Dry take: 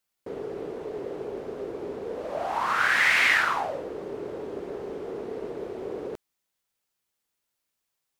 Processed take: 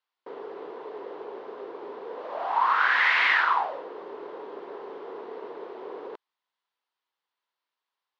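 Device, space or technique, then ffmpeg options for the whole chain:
phone earpiece: -af "highpass=480,equalizer=f=600:t=q:w=4:g=-4,equalizer=f=1k:t=q:w=4:g=8,equalizer=f=2.4k:t=q:w=4:g=-4,lowpass=f=4.1k:w=0.5412,lowpass=f=4.1k:w=1.3066"

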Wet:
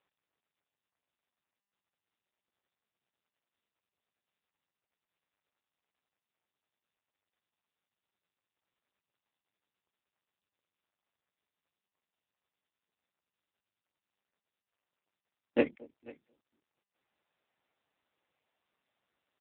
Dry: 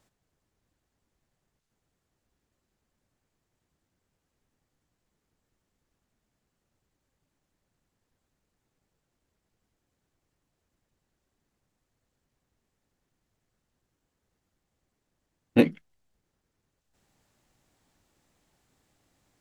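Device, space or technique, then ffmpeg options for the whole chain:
satellite phone: -af "lowshelf=f=300:g=-5,aecho=1:1:230|460|690:0.0631|0.0252|0.0101,afwtdn=0.00631,highpass=380,lowpass=3.4k,aecho=1:1:494:0.075" -ar 8000 -c:a libopencore_amrnb -b:a 6700

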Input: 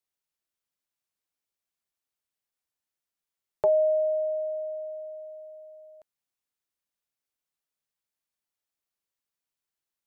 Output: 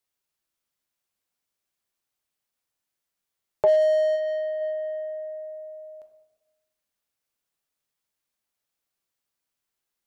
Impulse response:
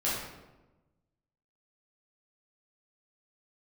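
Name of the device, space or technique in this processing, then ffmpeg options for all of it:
saturated reverb return: -filter_complex "[0:a]asplit=3[a][b][c];[a]afade=t=out:st=4.15:d=0.02[d];[b]lowshelf=f=470:g=-8,afade=t=in:st=4.15:d=0.02,afade=t=out:st=4.6:d=0.02[e];[c]afade=t=in:st=4.6:d=0.02[f];[d][e][f]amix=inputs=3:normalize=0,asplit=2[g][h];[1:a]atrim=start_sample=2205[i];[h][i]afir=irnorm=-1:irlink=0,asoftclip=type=tanh:threshold=-24dB,volume=-12dB[j];[g][j]amix=inputs=2:normalize=0,volume=2.5dB"

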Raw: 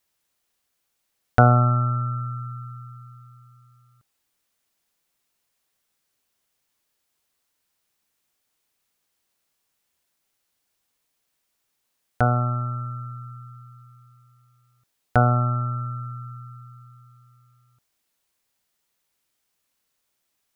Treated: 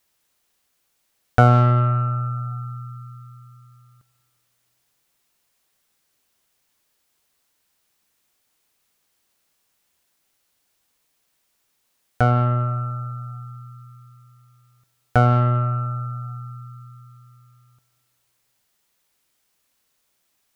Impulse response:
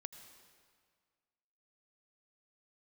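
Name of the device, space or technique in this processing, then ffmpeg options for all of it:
saturated reverb return: -filter_complex "[0:a]asplit=2[a][b];[1:a]atrim=start_sample=2205[c];[b][c]afir=irnorm=-1:irlink=0,asoftclip=type=tanh:threshold=-26dB,volume=5.5dB[d];[a][d]amix=inputs=2:normalize=0,volume=-1dB"

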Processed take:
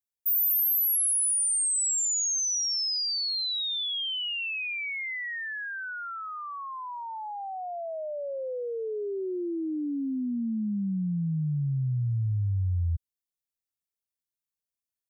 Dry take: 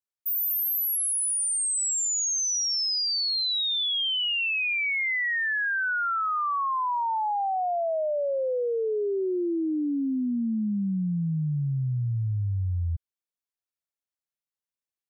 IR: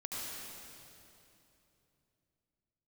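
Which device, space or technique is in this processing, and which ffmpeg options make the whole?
smiley-face EQ: -af "lowshelf=f=170:g=6.5,equalizer=f=1.1k:t=o:w=1.8:g=-6.5,highshelf=f=6.2k:g=7.5,volume=-4.5dB"

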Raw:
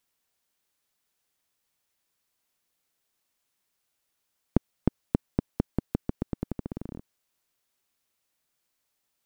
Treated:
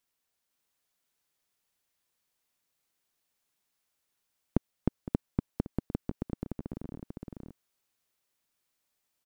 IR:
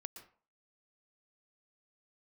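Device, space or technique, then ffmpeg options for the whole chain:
ducked delay: -filter_complex "[0:a]asplit=3[a][b][c];[b]adelay=512,volume=-2.5dB[d];[c]apad=whole_len=430710[e];[d][e]sidechaincompress=threshold=-37dB:ratio=3:attack=11:release=390[f];[a][f]amix=inputs=2:normalize=0,volume=-4dB"

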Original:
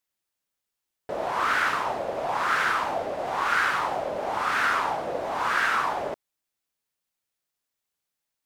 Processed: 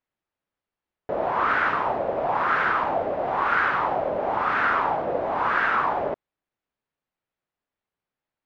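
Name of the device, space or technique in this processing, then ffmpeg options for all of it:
phone in a pocket: -af "lowpass=3.1k,highshelf=f=2.1k:g=-10,volume=5dB"

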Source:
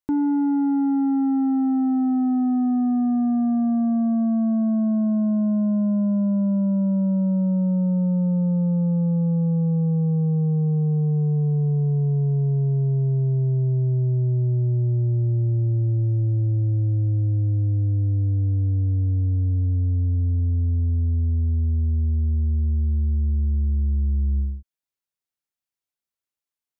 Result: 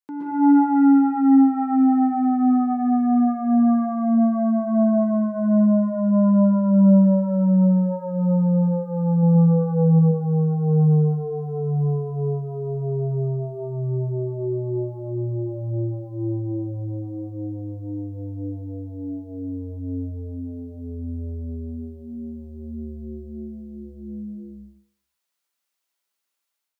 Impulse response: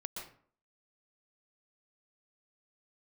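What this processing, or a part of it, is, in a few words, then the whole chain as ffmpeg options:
far laptop microphone: -filter_complex "[0:a]lowshelf=f=460:g=-10,asettb=1/sr,asplit=3[a][b][c];[a]atrim=end=9.224[d];[b]atrim=start=9.22:end=9.99,asetpts=PTS-STARTPTS,afade=t=in:d=0.004:c=qsin,afade=t=out:st=0.766:d=0.004:c=qsin,aecho=1:1:6.1:0.54,atrim=end_sample=33957[e];[c]atrim=start=9.986[f];[d][e]acrossfade=d=0.004:c1=hsin:c2=qsin[g];[g][f]acrossfade=d=0.004:c1=qsin:c2=hsin,highpass=110[h];[1:a]atrim=start_sample=2205[i];[h][i]afir=irnorm=-1:irlink=0,highpass=170,dynaudnorm=f=130:g=5:m=13dB"

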